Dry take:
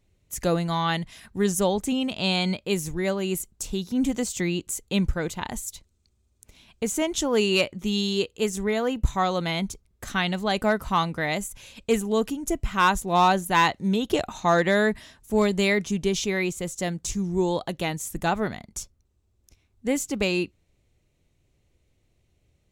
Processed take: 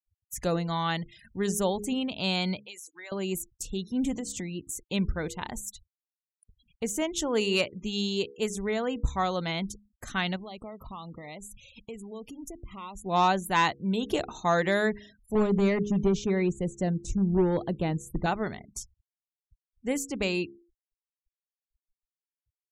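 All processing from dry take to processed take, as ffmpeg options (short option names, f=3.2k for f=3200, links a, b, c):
-filter_complex "[0:a]asettb=1/sr,asplit=3[a][b][c];[a]atrim=end=2.654[d];[b]atrim=start=2.65:end=3.12,asetpts=PTS-STARTPTS,afade=t=in:d=0.004:c=qsin,afade=t=out:st=0.466:d=0.004:c=qsin,highpass=1k,acompressor=threshold=-36dB:ratio=4:attack=3.2:release=140:knee=1:detection=peak,acrusher=bits=9:mode=log:mix=0:aa=0.000001[e];[c]atrim=start=3.116[f];[d][e]acrossfade=d=0.004:c1=hsin:c2=qsin[g];[g][f]acrossfade=d=0.004:c1=qsin:c2=hsin,asettb=1/sr,asplit=3[h][i][j];[h]atrim=end=4.124[k];[i]atrim=start=4.12:end=4.81,asetpts=PTS-STARTPTS,afade=t=in:d=0.004:c=qsin,afade=t=out:st=0.686:d=0.004:c=qsin,equalizer=f=130:w=0.37:g=5,acompressor=threshold=-26dB:ratio=12:attack=3.2:release=140:knee=1:detection=peak[l];[j]atrim=start=4.806[m];[k][l]acrossfade=d=0.004:c1=hsin:c2=qsin[n];[n][m]acrossfade=d=0.004:c1=qsin:c2=hsin,asettb=1/sr,asplit=3[o][p][q];[o]atrim=end=10.364[r];[p]atrim=start=10.36:end=13.06,asetpts=PTS-STARTPTS,afade=t=in:d=0.004:c=qsin,afade=t=out:st=2.696:d=0.004:c=qsin,highshelf=f=10k:g=-2,acompressor=threshold=-35dB:ratio=4:attack=3.2:release=140:knee=1:detection=peak,asuperstop=centerf=1600:order=4:qfactor=2.4[s];[q]atrim=start=13.056[t];[r][s]acrossfade=d=0.004:c1=hsin:c2=qsin[u];[u][t]acrossfade=d=0.004:c1=qsin:c2=hsin,asettb=1/sr,asplit=3[v][w][x];[v]atrim=end=15.354[y];[w]atrim=start=15.35:end=18.26,asetpts=PTS-STARTPTS,afade=t=in:d=0.004:c=qsin,afade=t=out:st=2.906:d=0.004:c=qsin,tiltshelf=f=830:g=7.5,aeval=exprs='clip(val(0),-1,0.178)':c=same[z];[x]atrim=start=18.256[aa];[y][z]acrossfade=d=0.004:c1=hsin:c2=qsin[ab];[ab][aa]acrossfade=d=0.004:c1=qsin:c2=hsin,bandreject=f=68.79:t=h:w=4,bandreject=f=137.58:t=h:w=4,bandreject=f=206.37:t=h:w=4,bandreject=f=275.16:t=h:w=4,bandreject=f=343.95:t=h:w=4,bandreject=f=412.74:t=h:w=4,bandreject=f=481.53:t=h:w=4,afftfilt=real='re*gte(hypot(re,im),0.00794)':imag='im*gte(hypot(re,im),0.00794)':win_size=1024:overlap=0.75,volume=-4dB"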